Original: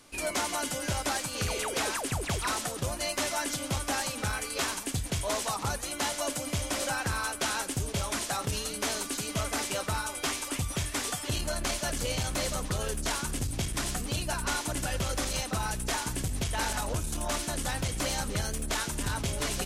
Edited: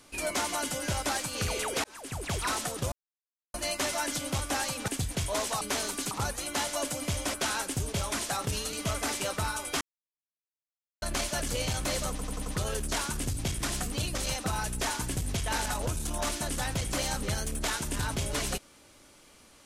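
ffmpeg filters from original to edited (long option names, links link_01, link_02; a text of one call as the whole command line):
ffmpeg -i in.wav -filter_complex "[0:a]asplit=15[link_01][link_02][link_03][link_04][link_05][link_06][link_07][link_08][link_09][link_10][link_11][link_12][link_13][link_14][link_15];[link_01]atrim=end=1.84,asetpts=PTS-STARTPTS,afade=type=out:start_time=1.836:duration=0.004:curve=hsin[link_16];[link_02]atrim=start=1.84:end=2.92,asetpts=PTS-STARTPTS,afade=type=in:duration=0.56,afade=type=out:start_time=1.076:duration=0.004:curve=hsin,apad=pad_dur=0.62[link_17];[link_03]atrim=start=2.92:end=4.262,asetpts=PTS-STARTPTS,afade=type=in:duration=0.004:curve=hsin[link_18];[link_04]atrim=start=4.828:end=5.562[link_19];[link_05]atrim=start=8.728:end=9.232[link_20];[link_06]atrim=start=5.558:end=6.792[link_21];[link_07]atrim=start=7.338:end=8.732[link_22];[link_08]atrim=start=9.228:end=10.31,asetpts=PTS-STARTPTS,afade=type=out:start_time=1.078:duration=0.004:curve=hsin[link_23];[link_09]atrim=start=10.31:end=11.52,asetpts=PTS-STARTPTS,volume=0[link_24];[link_10]atrim=start=11.52:end=12.692,asetpts=PTS-STARTPTS,afade=type=in:duration=0.004:curve=hsin[link_25];[link_11]atrim=start=12.598:end=12.692[link_26];[link_12]atrim=start=12.598:end=12.692[link_27];[link_13]atrim=start=12.598:end=12.692[link_28];[link_14]atrim=start=12.598:end=14.292[link_29];[link_15]atrim=start=15.218[link_30];[link_16][link_17][link_18]concat=n=3:v=0:a=1[link_31];[link_31][link_19]acrossfade=duration=0.004:curve1=hsin:curve2=hsin[link_32];[link_32][link_20]acrossfade=duration=0.004:curve1=hsin:curve2=hsin[link_33];[link_33][link_21]acrossfade=duration=0.004:curve1=hsin:curve2=hsin[link_34];[link_34][link_22]acrossfade=duration=0.004:curve1=hsin:curve2=hsin[link_35];[link_23][link_24][link_25]concat=n=3:v=0:a=1[link_36];[link_35][link_36]acrossfade=duration=0.004:curve1=hsin:curve2=hsin[link_37];[link_37][link_26]acrossfade=duration=0.004:curve1=hsin:curve2=hsin[link_38];[link_38][link_27]acrossfade=duration=0.004:curve1=hsin:curve2=hsin[link_39];[link_39][link_28]acrossfade=duration=0.004:curve1=hsin:curve2=hsin[link_40];[link_40][link_29]acrossfade=duration=0.004:curve1=hsin:curve2=hsin[link_41];[link_41][link_30]acrossfade=duration=0.004:curve1=hsin:curve2=hsin" out.wav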